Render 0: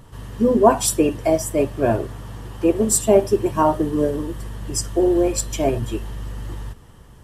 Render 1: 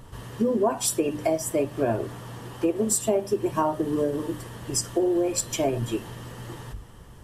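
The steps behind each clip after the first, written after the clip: hum notches 50/100/150/200/250/300 Hz; compression 4:1, threshold -21 dBFS, peak gain reduction 12 dB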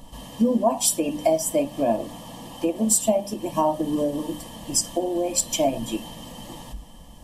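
static phaser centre 400 Hz, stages 6; small resonant body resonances 1.7/3.1 kHz, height 12 dB, ringing for 75 ms; trim +5 dB

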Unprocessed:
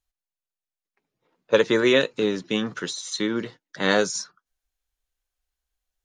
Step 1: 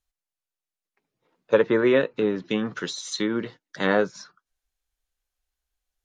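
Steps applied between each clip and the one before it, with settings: low-pass that closes with the level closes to 1.8 kHz, closed at -19.5 dBFS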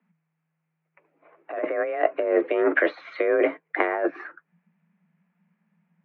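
compressor with a negative ratio -30 dBFS, ratio -1; elliptic low-pass 2.2 kHz, stop band 80 dB; frequency shift +160 Hz; trim +8 dB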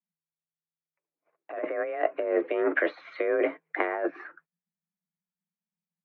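gate -52 dBFS, range -24 dB; trim -4.5 dB

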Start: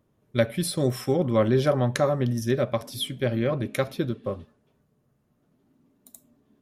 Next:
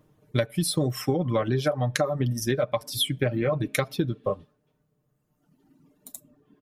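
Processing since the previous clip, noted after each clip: reverb removal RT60 1.9 s; comb 6.6 ms, depth 50%; compression 12:1, threshold -27 dBFS, peak gain reduction 13 dB; trim +6.5 dB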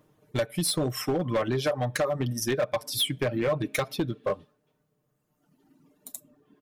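bass shelf 180 Hz -8.5 dB; overload inside the chain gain 22 dB; trim +1.5 dB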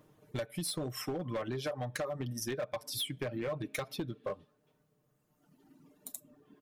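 compression 2:1, threshold -42 dBFS, peak gain reduction 10.5 dB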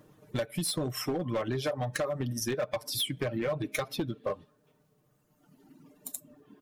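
coarse spectral quantiser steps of 15 dB; trim +5.5 dB

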